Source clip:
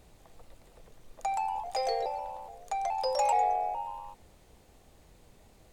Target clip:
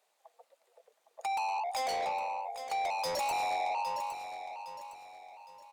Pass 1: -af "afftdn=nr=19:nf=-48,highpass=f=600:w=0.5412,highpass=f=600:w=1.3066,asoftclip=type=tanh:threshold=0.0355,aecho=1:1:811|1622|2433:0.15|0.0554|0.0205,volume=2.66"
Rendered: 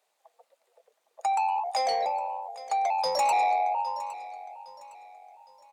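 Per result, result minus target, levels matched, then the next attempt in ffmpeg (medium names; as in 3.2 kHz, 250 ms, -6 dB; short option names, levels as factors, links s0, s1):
saturation: distortion -7 dB; echo-to-direct -6.5 dB
-af "afftdn=nr=19:nf=-48,highpass=f=600:w=0.5412,highpass=f=600:w=1.3066,asoftclip=type=tanh:threshold=0.0106,aecho=1:1:811|1622|2433:0.15|0.0554|0.0205,volume=2.66"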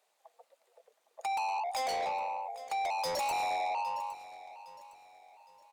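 echo-to-direct -6.5 dB
-af "afftdn=nr=19:nf=-48,highpass=f=600:w=0.5412,highpass=f=600:w=1.3066,asoftclip=type=tanh:threshold=0.0106,aecho=1:1:811|1622|2433|3244:0.316|0.117|0.0433|0.016,volume=2.66"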